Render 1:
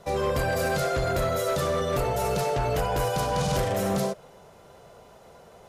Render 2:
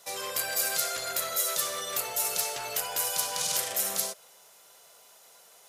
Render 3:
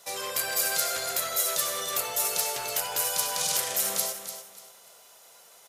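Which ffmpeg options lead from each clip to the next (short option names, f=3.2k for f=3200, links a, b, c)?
-af "aderivative,volume=9dB"
-af "aecho=1:1:294|588|882:0.316|0.0885|0.0248,volume=1.5dB"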